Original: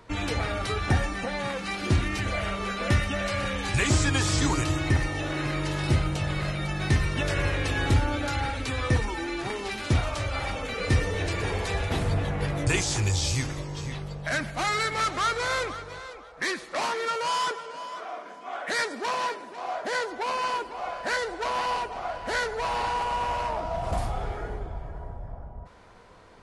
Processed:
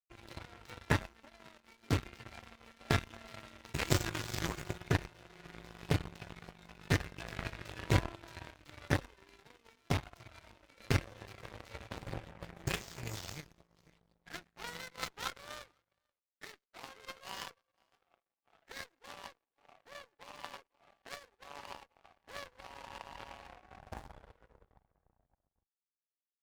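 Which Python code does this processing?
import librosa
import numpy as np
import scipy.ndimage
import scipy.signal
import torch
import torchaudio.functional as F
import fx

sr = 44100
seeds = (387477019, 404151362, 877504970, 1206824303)

y = fx.pitch_keep_formants(x, sr, semitones=2.5)
y = fx.power_curve(y, sr, exponent=3.0)
y = fx.running_max(y, sr, window=3)
y = y * librosa.db_to_amplitude(1.5)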